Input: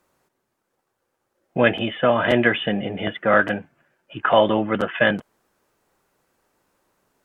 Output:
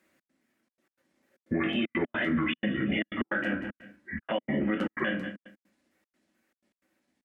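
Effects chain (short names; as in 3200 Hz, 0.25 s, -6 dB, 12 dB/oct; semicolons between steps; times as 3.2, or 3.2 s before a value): trilling pitch shifter -7 st, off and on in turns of 0.21 s; Doppler pass-by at 2.42, 11 m/s, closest 7.9 m; HPF 73 Hz; bell 430 Hz -10 dB 0.55 oct; on a send: feedback echo 0.186 s, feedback 27%, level -20 dB; on the sum: shoebox room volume 120 m³, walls furnished, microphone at 1.1 m; compressor 16:1, threshold -31 dBFS, peak gain reduction 21 dB; step gate "xx.xxxx.x.xx" 154 bpm -60 dB; graphic EQ 125/250/500/1000/2000 Hz -10/+11/+4/-9/+11 dB; limiter -24 dBFS, peak gain reduction 8 dB; gain +5 dB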